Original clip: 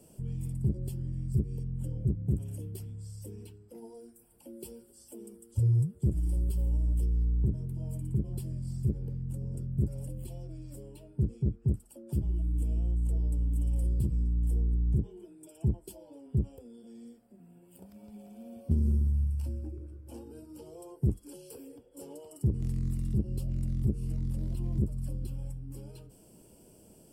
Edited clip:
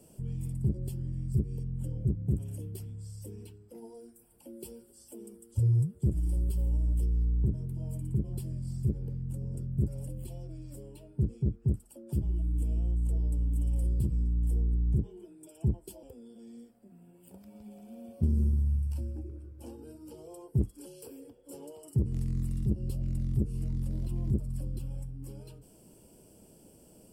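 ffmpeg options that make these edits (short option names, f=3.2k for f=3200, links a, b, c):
-filter_complex "[0:a]asplit=2[a][b];[a]atrim=end=16.032[c];[b]atrim=start=16.508[d];[c][d]acrossfade=d=0.004:c1=hsin:c2=hsin"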